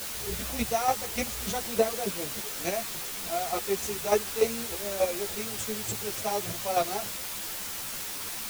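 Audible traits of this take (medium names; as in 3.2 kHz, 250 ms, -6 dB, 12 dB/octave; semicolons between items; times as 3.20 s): chopped level 3.4 Hz, depth 65%, duty 15%; a quantiser's noise floor 6-bit, dither triangular; a shimmering, thickened sound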